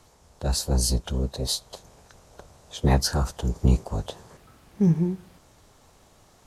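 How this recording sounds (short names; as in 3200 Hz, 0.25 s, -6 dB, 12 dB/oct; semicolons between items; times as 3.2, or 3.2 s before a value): noise floor -57 dBFS; spectral tilt -5.0 dB/oct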